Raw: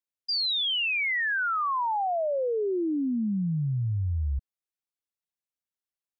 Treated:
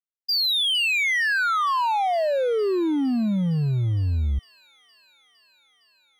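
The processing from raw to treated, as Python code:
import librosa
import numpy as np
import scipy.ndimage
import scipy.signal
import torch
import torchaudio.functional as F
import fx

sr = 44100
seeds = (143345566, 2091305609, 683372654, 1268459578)

y = fx.power_curve(x, sr, exponent=1.4)
y = fx.echo_wet_highpass(y, sr, ms=460, feedback_pct=77, hz=3500.0, wet_db=-16)
y = y * librosa.db_to_amplitude(5.5)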